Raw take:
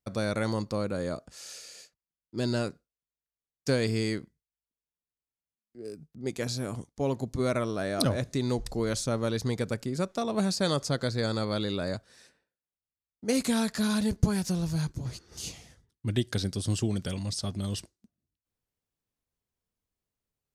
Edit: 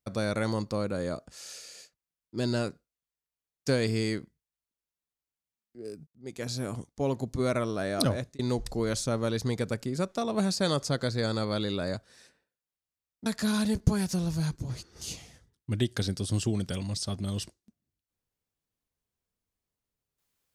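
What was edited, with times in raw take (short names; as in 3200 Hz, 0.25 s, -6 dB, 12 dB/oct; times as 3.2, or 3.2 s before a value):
6.07–6.6 fade in
8.11–8.39 fade out
13.26–13.62 cut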